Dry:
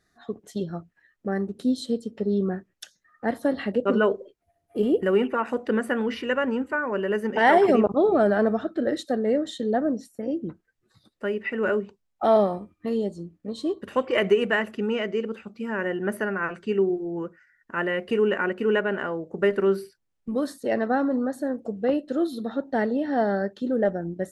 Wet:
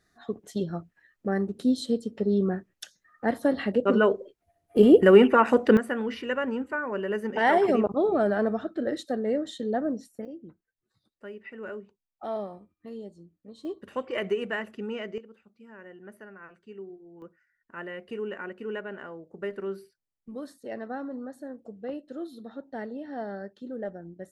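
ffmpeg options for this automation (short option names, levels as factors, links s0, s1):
-af "asetnsamples=n=441:p=0,asendcmd='4.77 volume volume 6.5dB;5.77 volume volume -4dB;10.25 volume volume -14dB;13.65 volume volume -8dB;15.18 volume volume -19.5dB;17.22 volume volume -12dB',volume=1"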